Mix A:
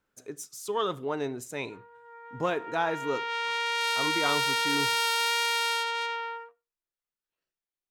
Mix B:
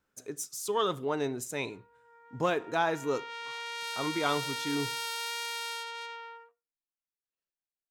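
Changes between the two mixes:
background -10.0 dB; master: add tone controls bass +1 dB, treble +4 dB

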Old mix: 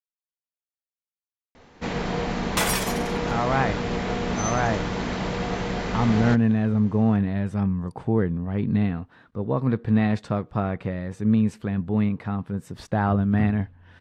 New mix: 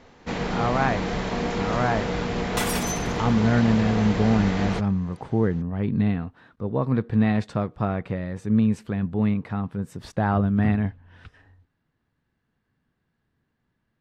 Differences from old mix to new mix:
speech: entry -2.75 s; first sound: entry -1.55 s; second sound -4.0 dB

